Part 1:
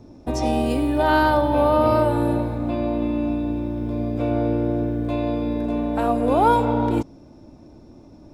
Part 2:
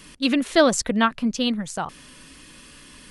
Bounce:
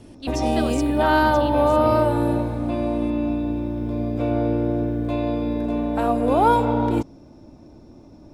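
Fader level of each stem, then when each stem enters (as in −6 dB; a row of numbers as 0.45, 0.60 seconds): 0.0, −13.0 decibels; 0.00, 0.00 seconds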